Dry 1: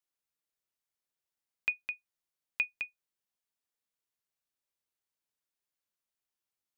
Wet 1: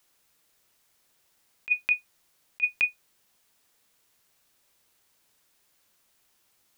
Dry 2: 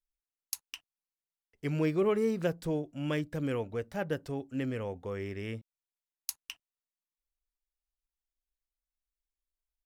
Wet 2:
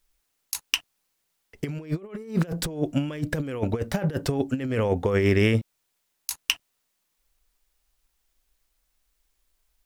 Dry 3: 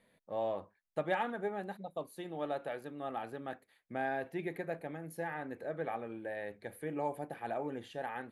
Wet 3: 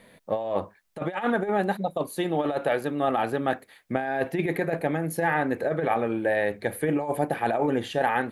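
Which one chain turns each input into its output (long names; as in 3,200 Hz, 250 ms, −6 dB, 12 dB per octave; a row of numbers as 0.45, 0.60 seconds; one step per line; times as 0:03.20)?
compressor whose output falls as the input rises −38 dBFS, ratio −0.5
loudness normalisation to −27 LKFS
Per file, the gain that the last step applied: +15.5, +13.5, +14.5 decibels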